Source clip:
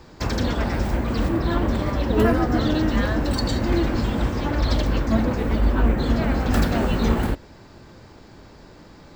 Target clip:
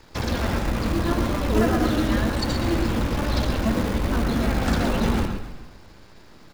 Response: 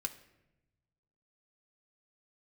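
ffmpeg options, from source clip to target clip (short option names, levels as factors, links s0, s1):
-filter_complex "[0:a]bandreject=f=50:t=h:w=6,bandreject=f=100:t=h:w=6,bandreject=f=150:t=h:w=6,bandreject=f=200:t=h:w=6,bandreject=f=250:t=h:w=6,bandreject=f=300:t=h:w=6,bandreject=f=350:t=h:w=6,bandreject=f=400:t=h:w=6,bandreject=f=450:t=h:w=6,atempo=1.4,aresample=22050,aresample=44100,acrossover=split=1300[s0][s1];[s0]acrusher=bits=6:dc=4:mix=0:aa=0.000001[s2];[s2][s1]amix=inputs=2:normalize=0,bandreject=f=7800:w=28,asplit=6[s3][s4][s5][s6][s7][s8];[s4]adelay=134,afreqshift=-32,volume=0.251[s9];[s5]adelay=268,afreqshift=-64,volume=0.123[s10];[s6]adelay=402,afreqshift=-96,volume=0.0603[s11];[s7]adelay=536,afreqshift=-128,volume=0.0295[s12];[s8]adelay=670,afreqshift=-160,volume=0.0145[s13];[s3][s9][s10][s11][s12][s13]amix=inputs=6:normalize=0,asplit=2[s14][s15];[1:a]atrim=start_sample=2205,lowpass=4300,adelay=114[s16];[s15][s16]afir=irnorm=-1:irlink=0,volume=0.531[s17];[s14][s17]amix=inputs=2:normalize=0,volume=0.841"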